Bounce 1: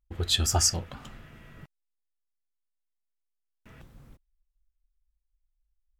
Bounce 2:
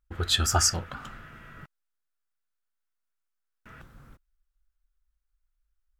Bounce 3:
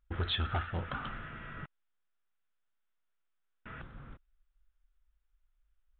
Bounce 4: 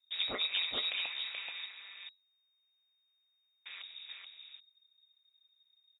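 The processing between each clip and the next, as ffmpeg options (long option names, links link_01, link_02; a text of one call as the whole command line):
ffmpeg -i in.wav -af "equalizer=frequency=1400:width_type=o:width=0.7:gain=11.5" out.wav
ffmpeg -i in.wav -af "acompressor=threshold=-27dB:ratio=5,aresample=8000,asoftclip=type=tanh:threshold=-29dB,aresample=44100,volume=2.5dB" out.wav
ffmpeg -i in.wav -af "aeval=exprs='val(0)*sin(2*PI*95*n/s)':channel_layout=same,lowpass=frequency=3200:width_type=q:width=0.5098,lowpass=frequency=3200:width_type=q:width=0.6013,lowpass=frequency=3200:width_type=q:width=0.9,lowpass=frequency=3200:width_type=q:width=2.563,afreqshift=-3800,aecho=1:1:430:0.631,volume=1.5dB" out.wav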